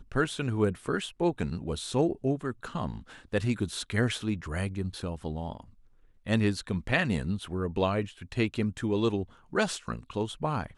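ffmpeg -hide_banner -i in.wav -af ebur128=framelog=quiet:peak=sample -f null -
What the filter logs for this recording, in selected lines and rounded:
Integrated loudness:
  I:         -30.7 LUFS
  Threshold: -41.0 LUFS
Loudness range:
  LRA:         2.9 LU
  Threshold: -51.1 LUFS
  LRA low:   -32.6 LUFS
  LRA high:  -29.8 LUFS
Sample peak:
  Peak:      -11.0 dBFS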